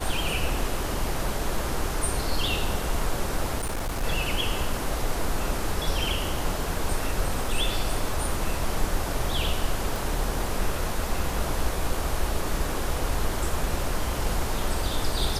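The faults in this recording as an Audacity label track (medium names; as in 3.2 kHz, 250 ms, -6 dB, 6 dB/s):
3.580000	4.040000	clipped -25 dBFS
9.960000	9.960000	pop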